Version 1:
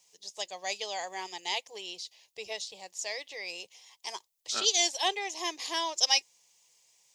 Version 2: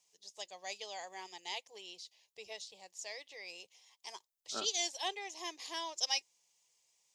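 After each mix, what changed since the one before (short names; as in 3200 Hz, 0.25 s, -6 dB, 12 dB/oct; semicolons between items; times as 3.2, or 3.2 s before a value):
first voice -9.0 dB; second voice: add running mean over 20 samples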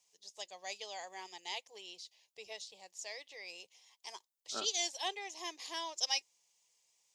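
master: add low shelf 220 Hz -3.5 dB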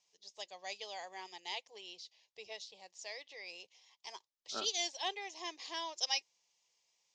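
master: add LPF 6100 Hz 24 dB/oct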